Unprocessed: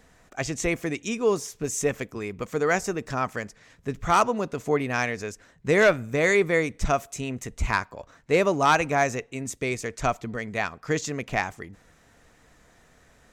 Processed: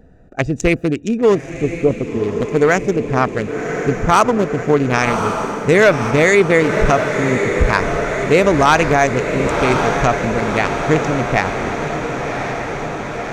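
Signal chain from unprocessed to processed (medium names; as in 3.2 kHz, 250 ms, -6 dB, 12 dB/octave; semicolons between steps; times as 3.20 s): local Wiener filter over 41 samples; 1.50–2.09 s: elliptic low-pass 1.2 kHz; on a send: echo that smears into a reverb 1085 ms, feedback 72%, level -9.5 dB; on the sum: loudness maximiser +15 dB; trim -2 dB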